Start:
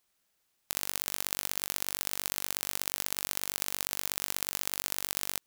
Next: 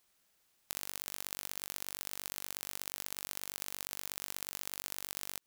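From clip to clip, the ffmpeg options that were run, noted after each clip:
ffmpeg -i in.wav -af "acompressor=threshold=-36dB:ratio=5,volume=2.5dB" out.wav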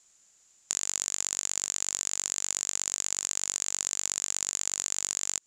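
ffmpeg -i in.wav -af "lowpass=frequency=7100:width_type=q:width=12,volume=3.5dB" out.wav

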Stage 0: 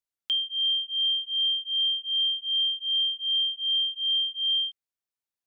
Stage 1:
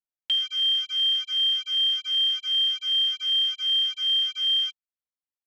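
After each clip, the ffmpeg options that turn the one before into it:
ffmpeg -i in.wav -af "lowpass=frequency=2800:poles=1,afwtdn=0.00891,aecho=1:1:3.9:0.85,volume=5dB" out.wav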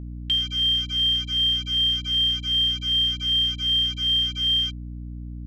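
ffmpeg -i in.wav -af "equalizer=frequency=13000:width_type=o:width=2.1:gain=4,aeval=exprs='val(0)+0.0224*(sin(2*PI*60*n/s)+sin(2*PI*2*60*n/s)/2+sin(2*PI*3*60*n/s)/3+sin(2*PI*4*60*n/s)/4+sin(2*PI*5*60*n/s)/5)':channel_layout=same" out.wav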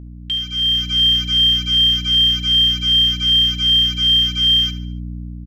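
ffmpeg -i in.wav -af "aecho=1:1:72|144|216|288:0.211|0.0888|0.0373|0.0157,dynaudnorm=framelen=150:gausssize=9:maxgain=8.5dB" out.wav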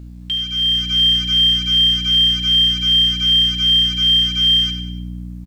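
ffmpeg -i in.wav -filter_complex "[0:a]acrusher=bits=9:mix=0:aa=0.000001,asplit=2[link_01][link_02];[link_02]aecho=0:1:95|190|285|380:0.266|0.114|0.0492|0.0212[link_03];[link_01][link_03]amix=inputs=2:normalize=0" out.wav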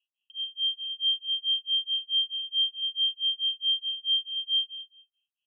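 ffmpeg -i in.wav -af "asoftclip=type=tanh:threshold=-11.5dB,tremolo=f=4.6:d=0.99,asuperpass=centerf=2900:order=12:qfactor=4.1,volume=-7dB" out.wav

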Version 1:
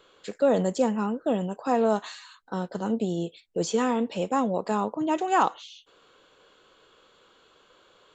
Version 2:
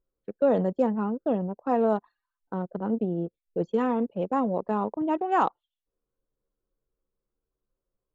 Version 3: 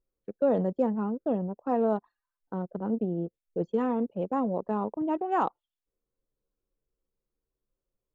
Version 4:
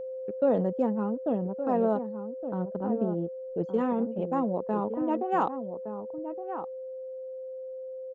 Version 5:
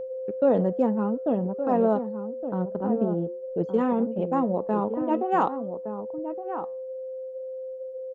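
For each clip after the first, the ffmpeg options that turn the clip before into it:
ffmpeg -i in.wav -af "lowpass=frequency=1600:poles=1,anlmdn=10" out.wav
ffmpeg -i in.wav -af "tiltshelf=frequency=1200:gain=3,volume=-4.5dB" out.wav
ffmpeg -i in.wav -filter_complex "[0:a]aeval=exprs='val(0)+0.02*sin(2*PI*520*n/s)':channel_layout=same,asplit=2[link_01][link_02];[link_02]adelay=1166,volume=-9dB,highshelf=frequency=4000:gain=-26.2[link_03];[link_01][link_03]amix=inputs=2:normalize=0" out.wav
ffmpeg -i in.wav -af "flanger=delay=4.5:depth=4.1:regen=-88:speed=0.51:shape=triangular,volume=8dB" out.wav

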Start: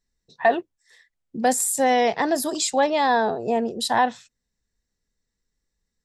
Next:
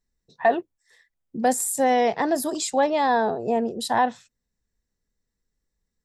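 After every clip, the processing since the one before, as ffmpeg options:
ffmpeg -i in.wav -af "equalizer=frequency=4000:width_type=o:width=2.7:gain=-5" out.wav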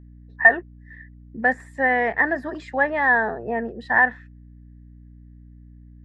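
ffmpeg -i in.wav -af "lowpass=frequency=1800:width_type=q:width=11,aeval=exprs='val(0)+0.01*(sin(2*PI*60*n/s)+sin(2*PI*2*60*n/s)/2+sin(2*PI*3*60*n/s)/3+sin(2*PI*4*60*n/s)/4+sin(2*PI*5*60*n/s)/5)':channel_layout=same,volume=-4dB" out.wav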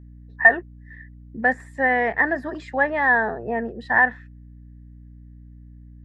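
ffmpeg -i in.wav -af "equalizer=frequency=87:width=0.86:gain=2.5" out.wav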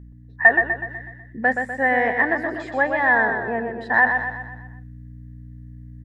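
ffmpeg -i in.wav -af "areverse,acompressor=mode=upward:threshold=-31dB:ratio=2.5,areverse,aecho=1:1:124|248|372|496|620|744:0.501|0.251|0.125|0.0626|0.0313|0.0157" out.wav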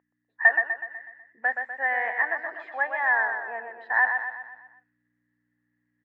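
ffmpeg -i in.wav -af "asuperpass=centerf=1400:order=4:qfactor=0.74,volume=-4.5dB" out.wav

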